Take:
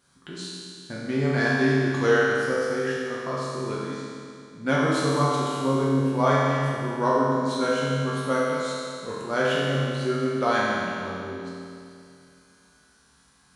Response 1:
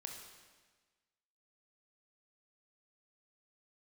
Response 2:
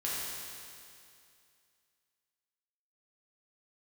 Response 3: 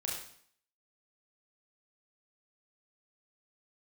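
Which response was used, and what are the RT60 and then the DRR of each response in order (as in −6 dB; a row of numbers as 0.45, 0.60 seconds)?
2; 1.4, 2.4, 0.60 seconds; 2.0, −7.5, −3.5 decibels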